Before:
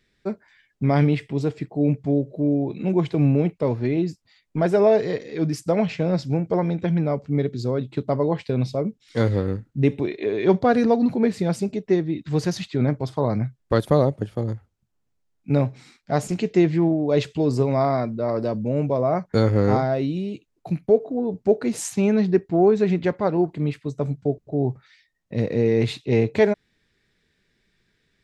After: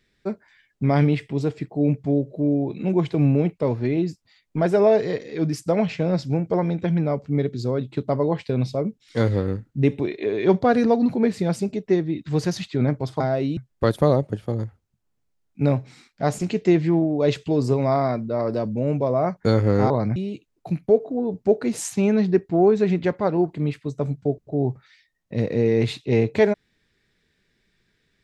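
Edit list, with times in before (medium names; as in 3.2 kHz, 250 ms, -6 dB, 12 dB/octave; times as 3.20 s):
13.20–13.46 s: swap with 19.79–20.16 s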